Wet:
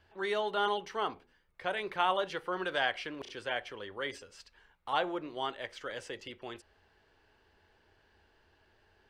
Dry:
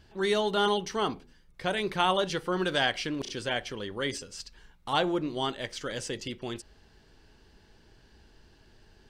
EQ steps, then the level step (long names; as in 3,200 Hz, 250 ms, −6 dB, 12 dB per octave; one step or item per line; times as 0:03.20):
three-way crossover with the lows and the highs turned down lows −14 dB, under 410 Hz, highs −17 dB, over 3,000 Hz
parametric band 86 Hz +10 dB 0.43 octaves
high-shelf EQ 8,000 Hz +10 dB
−2.5 dB